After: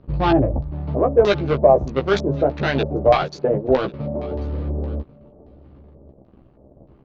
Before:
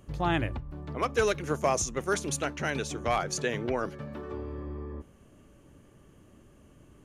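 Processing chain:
adaptive Wiener filter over 25 samples
0:03.17–0:03.94: noise gate −31 dBFS, range −12 dB
leveller curve on the samples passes 2
auto-filter low-pass square 1.6 Hz 620–4,400 Hz
high-frequency loss of the air 140 metres
double-tracking delay 15 ms −4 dB
on a send: single-tap delay 1,091 ms −22.5 dB
on the sum: level +3.5 dB

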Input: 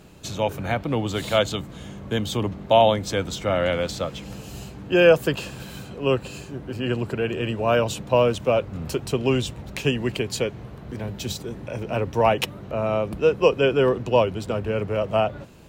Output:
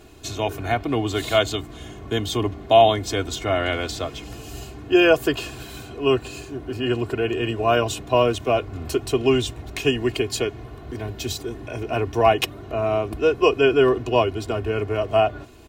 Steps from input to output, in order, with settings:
comb filter 2.8 ms, depth 80%

